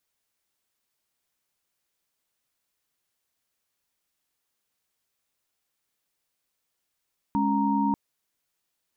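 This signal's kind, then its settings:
held notes G#3/C#4/A#5 sine, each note −25.5 dBFS 0.59 s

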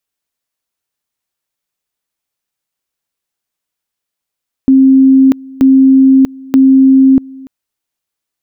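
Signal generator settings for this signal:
tone at two levels in turn 266 Hz −2.5 dBFS, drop 24.5 dB, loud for 0.64 s, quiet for 0.29 s, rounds 3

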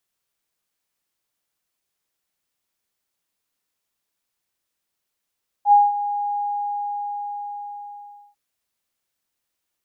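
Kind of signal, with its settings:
note with an ADSR envelope sine 820 Hz, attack 72 ms, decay 197 ms, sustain −13.5 dB, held 0.73 s, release 1,970 ms −8 dBFS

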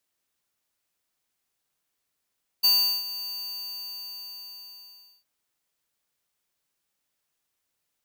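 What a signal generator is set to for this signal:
note with an ADSR envelope square 4,590 Hz, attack 17 ms, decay 380 ms, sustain −15.5 dB, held 0.62 s, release 1,990 ms −18.5 dBFS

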